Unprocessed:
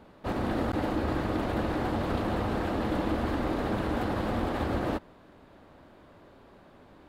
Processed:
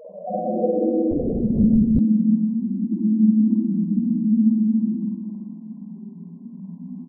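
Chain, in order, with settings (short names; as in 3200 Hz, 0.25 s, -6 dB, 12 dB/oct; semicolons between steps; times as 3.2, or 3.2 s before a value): reverb removal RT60 0.61 s; low-pass sweep 660 Hz -> 230 Hz, 0.28–1.25; reverb removal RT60 1 s; bell 290 Hz -9 dB 0.37 oct; in parallel at +2 dB: upward compressor, threshold -30 dBFS; on the sum: loudest bins only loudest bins 1; crackle 11/s -43 dBFS; on a send: echo 0.286 s -9.5 dB; on the sum: spring tank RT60 2.3 s, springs 46/52/60 ms, chirp 55 ms, DRR -8.5 dB; FFT band-pass 160–1100 Hz; 1.11–1.99 LPC vocoder at 8 kHz whisper; gain +6 dB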